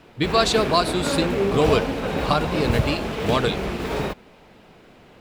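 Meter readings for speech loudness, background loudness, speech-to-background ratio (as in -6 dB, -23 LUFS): -23.0 LUFS, -25.5 LUFS, 2.5 dB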